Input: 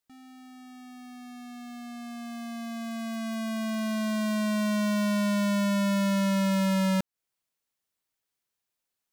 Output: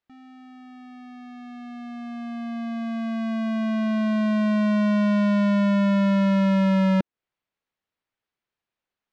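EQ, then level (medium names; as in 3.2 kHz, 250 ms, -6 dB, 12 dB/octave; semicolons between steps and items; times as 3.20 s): low-pass 2.9 kHz 12 dB/octave; dynamic bell 310 Hz, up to +5 dB, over -42 dBFS, Q 0.91; +3.0 dB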